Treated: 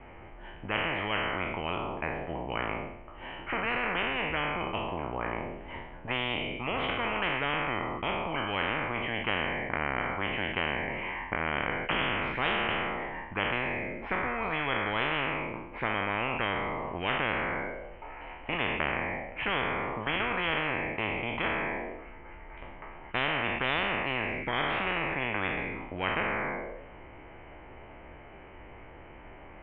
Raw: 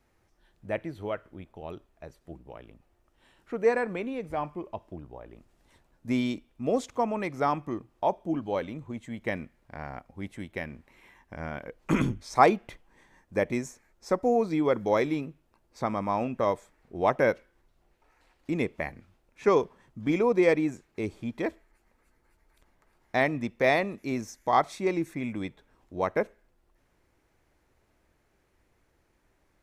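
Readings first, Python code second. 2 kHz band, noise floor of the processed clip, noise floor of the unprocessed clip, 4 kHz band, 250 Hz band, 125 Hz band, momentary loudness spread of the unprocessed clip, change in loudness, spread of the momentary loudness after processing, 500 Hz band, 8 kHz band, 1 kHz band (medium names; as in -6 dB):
+7.0 dB, -48 dBFS, -70 dBFS, +11.5 dB, -6.0 dB, -1.0 dB, 18 LU, -2.0 dB, 19 LU, -6.5 dB, under -30 dB, -1.0 dB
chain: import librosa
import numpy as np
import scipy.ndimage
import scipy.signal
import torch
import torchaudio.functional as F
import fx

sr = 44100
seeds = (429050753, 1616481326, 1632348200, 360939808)

y = fx.spec_trails(x, sr, decay_s=0.76)
y = scipy.signal.sosfilt(scipy.signal.cheby1(6, 6, 3100.0, 'lowpass', fs=sr, output='sos'), y)
y = fx.spectral_comp(y, sr, ratio=10.0)
y = y * 10.0 ** (-7.0 / 20.0)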